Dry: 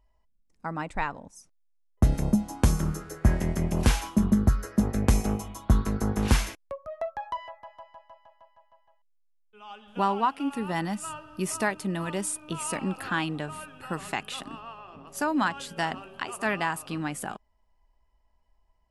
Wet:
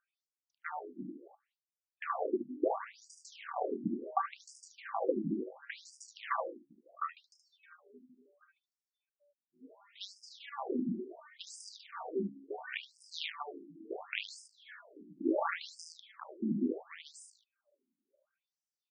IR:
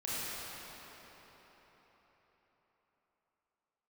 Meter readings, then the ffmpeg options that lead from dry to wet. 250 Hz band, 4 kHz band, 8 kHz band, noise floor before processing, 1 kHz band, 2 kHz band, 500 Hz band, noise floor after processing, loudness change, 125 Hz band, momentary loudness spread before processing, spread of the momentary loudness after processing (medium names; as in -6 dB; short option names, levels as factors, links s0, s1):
-10.5 dB, -8.0 dB, -18.0 dB, -67 dBFS, -9.0 dB, -11.5 dB, -5.0 dB, under -85 dBFS, -10.5 dB, -24.0 dB, 15 LU, 18 LU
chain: -filter_complex "[0:a]aeval=exprs='val(0)*sin(2*PI*580*n/s)':c=same,acrossover=split=4200[s0][s1];[s1]acompressor=threshold=0.00562:ratio=4:attack=1:release=60[s2];[s0][s2]amix=inputs=2:normalize=0,lowshelf=f=280:g=-7.5,bandreject=f=69.39:t=h:w=4,bandreject=f=138.78:t=h:w=4,bandreject=f=208.17:t=h:w=4,bandreject=f=277.56:t=h:w=4,bandreject=f=346.95:t=h:w=4,bandreject=f=416.34:t=h:w=4,bandreject=f=485.73:t=h:w=4,bandreject=f=555.12:t=h:w=4,bandreject=f=624.51:t=h:w=4,bandreject=f=693.9:t=h:w=4,bandreject=f=763.29:t=h:w=4,bandreject=f=832.68:t=h:w=4,asoftclip=type=tanh:threshold=0.211,asubboost=boost=10.5:cutoff=200,aeval=exprs='0.422*(cos(1*acos(clip(val(0)/0.422,-1,1)))-cos(1*PI/2))+0.133*(cos(6*acos(clip(val(0)/0.422,-1,1)))-cos(6*PI/2))':c=same,aecho=1:1:31|74:0.335|0.562,afftfilt=real='re*between(b*sr/1024,240*pow(6900/240,0.5+0.5*sin(2*PI*0.71*pts/sr))/1.41,240*pow(6900/240,0.5+0.5*sin(2*PI*0.71*pts/sr))*1.41)':imag='im*between(b*sr/1024,240*pow(6900/240,0.5+0.5*sin(2*PI*0.71*pts/sr))/1.41,240*pow(6900/240,0.5+0.5*sin(2*PI*0.71*pts/sr))*1.41)':win_size=1024:overlap=0.75,volume=0.841"